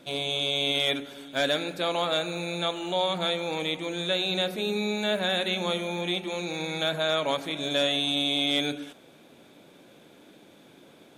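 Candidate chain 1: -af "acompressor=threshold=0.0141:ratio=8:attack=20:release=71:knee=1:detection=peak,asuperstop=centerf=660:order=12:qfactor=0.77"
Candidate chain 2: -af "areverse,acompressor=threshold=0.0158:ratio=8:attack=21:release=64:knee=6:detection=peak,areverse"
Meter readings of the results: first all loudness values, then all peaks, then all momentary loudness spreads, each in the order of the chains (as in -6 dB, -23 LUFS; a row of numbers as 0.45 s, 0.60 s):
-37.5 LUFS, -35.0 LUFS; -23.5 dBFS, -21.0 dBFS; 20 LU, 20 LU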